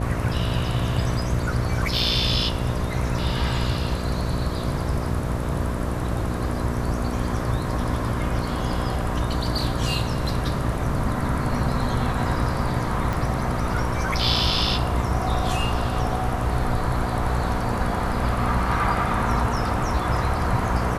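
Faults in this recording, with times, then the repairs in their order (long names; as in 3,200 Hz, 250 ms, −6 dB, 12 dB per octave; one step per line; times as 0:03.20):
mains buzz 60 Hz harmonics 11 −28 dBFS
0:13.13: click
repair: click removal
hum removal 60 Hz, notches 11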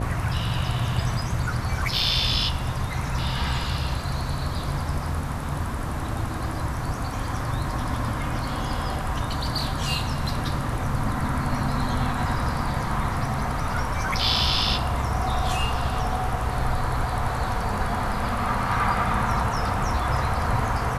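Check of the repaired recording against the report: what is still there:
0:13.13: click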